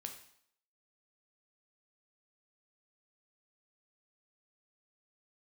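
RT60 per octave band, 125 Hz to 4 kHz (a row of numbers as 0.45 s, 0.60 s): 0.55 s, 0.60 s, 0.65 s, 0.70 s, 0.65 s, 0.65 s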